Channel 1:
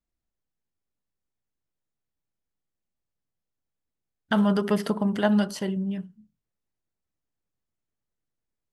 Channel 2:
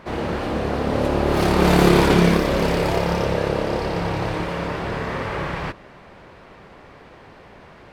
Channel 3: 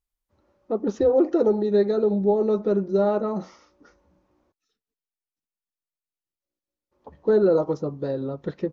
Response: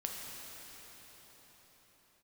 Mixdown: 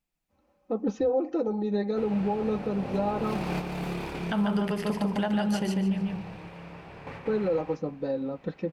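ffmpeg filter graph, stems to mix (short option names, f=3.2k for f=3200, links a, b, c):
-filter_complex "[0:a]highpass=120,volume=1dB,asplit=2[a][b];[b]volume=-3dB[c];[1:a]adelay=1900,volume=-17dB,asplit=2[d][e];[e]volume=-4.5dB[f];[2:a]aecho=1:1:3.9:0.62,volume=-5.5dB,asplit=2[g][h];[h]apad=whole_len=433296[i];[d][i]sidechaingate=range=-33dB:threshold=-53dB:ratio=16:detection=peak[j];[c][f]amix=inputs=2:normalize=0,aecho=0:1:146|292|438|584:1|0.24|0.0576|0.0138[k];[a][j][g][k]amix=inputs=4:normalize=0,equalizer=f=160:t=o:w=0.33:g=8,equalizer=f=800:t=o:w=0.33:g=5,equalizer=f=2.5k:t=o:w=0.33:g=8,alimiter=limit=-18.5dB:level=0:latency=1:release=256"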